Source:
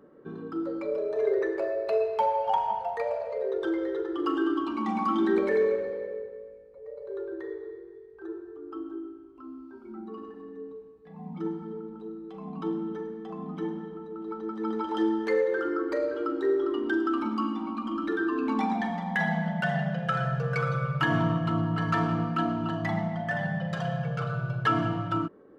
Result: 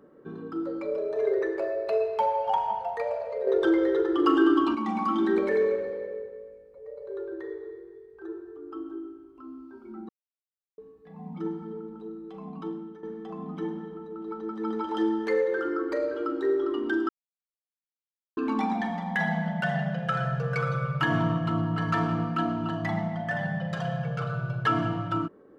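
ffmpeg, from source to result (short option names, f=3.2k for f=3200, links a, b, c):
-filter_complex "[0:a]asettb=1/sr,asplit=3[a][b][c];[a]atrim=end=3.474[d];[b]atrim=start=3.47:end=4.75,asetpts=PTS-STARTPTS,afade=t=in:d=0.004:c=qsin,afade=t=out:st=1.276:d=0.004:c=qsin,acontrast=65[e];[c]atrim=start=4.746[f];[d][e]acrossfade=d=0.004:c1=hsin:c2=qsin[g];[g][f]acrossfade=d=0.004:c1=qsin:c2=hsin,asplit=6[h][i][j][k][l][m];[h]atrim=end=10.09,asetpts=PTS-STARTPTS,afade=t=out:st=10.086:d=0.004:c=hsin[n];[i]atrim=start=10.09:end=10.78,asetpts=PTS-STARTPTS,volume=0[o];[j]atrim=start=10.78:end=13.03,asetpts=PTS-STARTPTS,afade=t=in:d=0.004:c=hsin,afade=t=out:st=1.59:d=0.66:silence=0.223872[p];[k]atrim=start=13.03:end=17.09,asetpts=PTS-STARTPTS,afade=t=in:d=0.004:c=hsin:silence=0.223872,afade=t=out:st=4.056:d=0.004:c=hsin[q];[l]atrim=start=17.09:end=18.37,asetpts=PTS-STARTPTS,volume=0[r];[m]atrim=start=18.37,asetpts=PTS-STARTPTS,afade=t=in:d=0.004:c=hsin[s];[n][o][p][q][r][s]concat=n=6:v=0:a=1"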